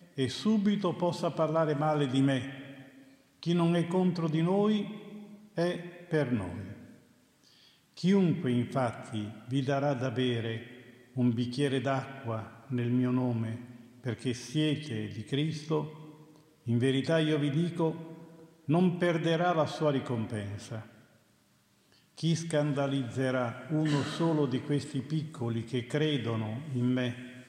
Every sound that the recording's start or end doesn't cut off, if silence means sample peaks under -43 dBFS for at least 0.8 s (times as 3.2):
7.97–20.87